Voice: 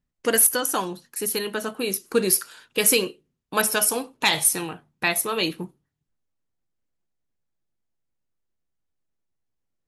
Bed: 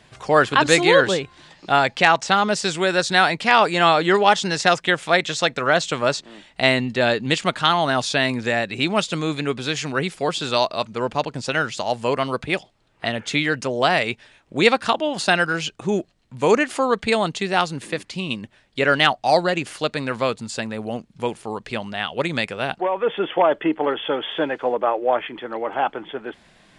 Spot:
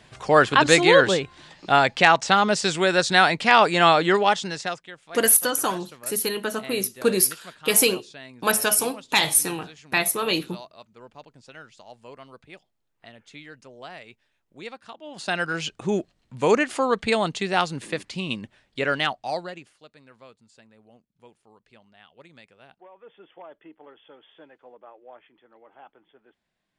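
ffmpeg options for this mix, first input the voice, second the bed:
ffmpeg -i stem1.wav -i stem2.wav -filter_complex "[0:a]adelay=4900,volume=0.5dB[link_01];[1:a]volume=19.5dB,afade=type=out:start_time=3.91:duration=0.97:silence=0.0794328,afade=type=in:start_time=15:duration=0.71:silence=0.1,afade=type=out:start_time=18.38:duration=1.36:silence=0.0595662[link_02];[link_01][link_02]amix=inputs=2:normalize=0" out.wav

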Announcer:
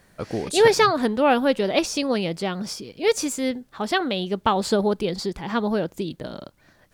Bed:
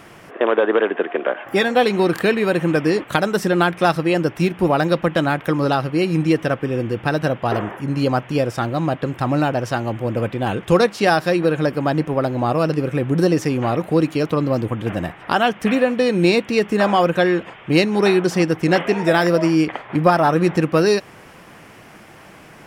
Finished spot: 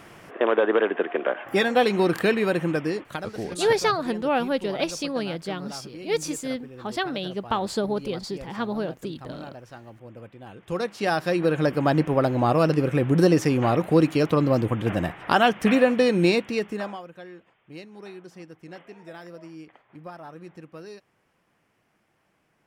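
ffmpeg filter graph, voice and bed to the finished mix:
ffmpeg -i stem1.wav -i stem2.wav -filter_complex "[0:a]adelay=3050,volume=-5dB[link_01];[1:a]volume=16dB,afade=type=out:start_time=2.39:duration=0.98:silence=0.133352,afade=type=in:start_time=10.55:duration=1.35:silence=0.1,afade=type=out:start_time=15.95:duration=1.07:silence=0.0595662[link_02];[link_01][link_02]amix=inputs=2:normalize=0" out.wav

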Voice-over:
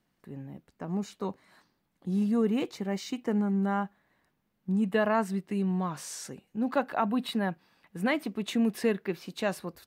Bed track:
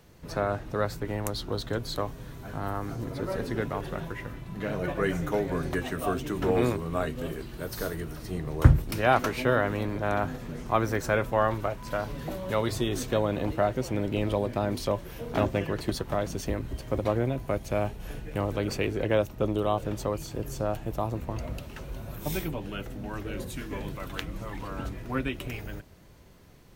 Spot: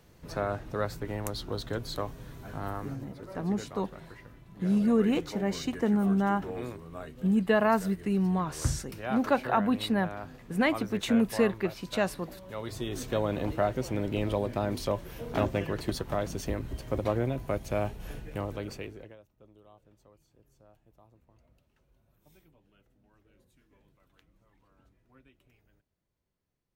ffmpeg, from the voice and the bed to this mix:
ffmpeg -i stem1.wav -i stem2.wav -filter_complex "[0:a]adelay=2550,volume=2dB[link_01];[1:a]volume=7.5dB,afade=type=out:start_time=2.69:duration=0.41:silence=0.334965,afade=type=in:start_time=12.52:duration=0.78:silence=0.298538,afade=type=out:start_time=18.07:duration=1.09:silence=0.0375837[link_02];[link_01][link_02]amix=inputs=2:normalize=0" out.wav

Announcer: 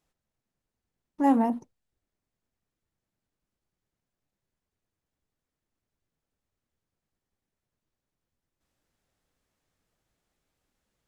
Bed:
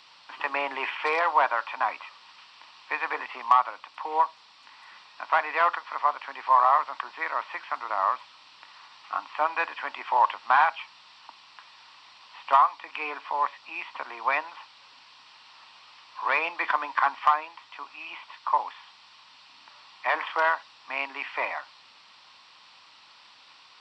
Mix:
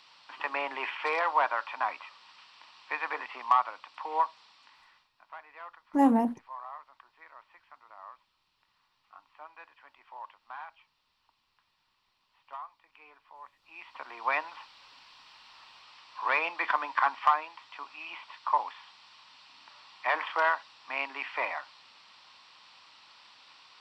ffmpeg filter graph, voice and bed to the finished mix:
ffmpeg -i stem1.wav -i stem2.wav -filter_complex "[0:a]adelay=4750,volume=-0.5dB[link_01];[1:a]volume=16.5dB,afade=type=out:start_time=4.45:duration=0.65:silence=0.112202,afade=type=in:start_time=13.56:duration=0.84:silence=0.0944061[link_02];[link_01][link_02]amix=inputs=2:normalize=0" out.wav

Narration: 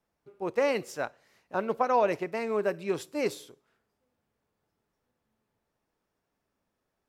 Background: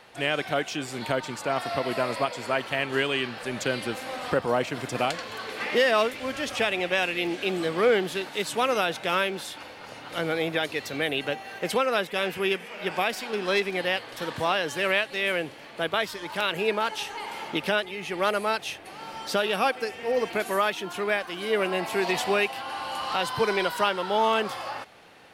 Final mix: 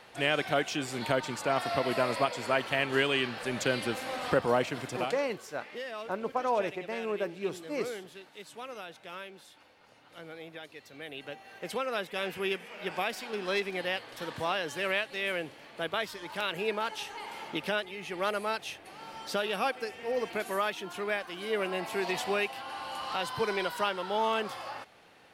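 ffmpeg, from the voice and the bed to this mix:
ffmpeg -i stem1.wav -i stem2.wav -filter_complex "[0:a]adelay=4550,volume=-4.5dB[link_01];[1:a]volume=10.5dB,afade=type=out:start_time=4.52:duration=0.85:silence=0.149624,afade=type=in:start_time=10.92:duration=1.4:silence=0.251189[link_02];[link_01][link_02]amix=inputs=2:normalize=0" out.wav

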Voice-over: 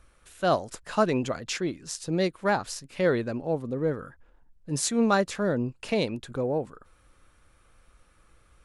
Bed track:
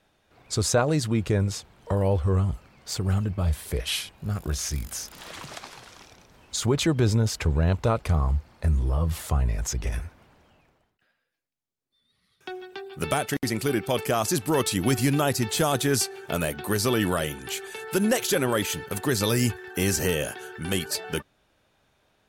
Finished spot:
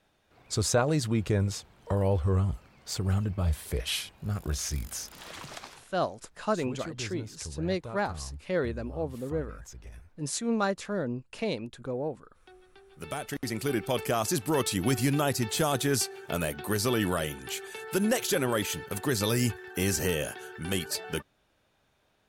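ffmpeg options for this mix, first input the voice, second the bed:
ffmpeg -i stem1.wav -i stem2.wav -filter_complex "[0:a]adelay=5500,volume=-5dB[link_01];[1:a]volume=11.5dB,afade=type=out:start_time=5.66:duration=0.24:silence=0.177828,afade=type=in:start_time=12.83:duration=0.95:silence=0.188365[link_02];[link_01][link_02]amix=inputs=2:normalize=0" out.wav

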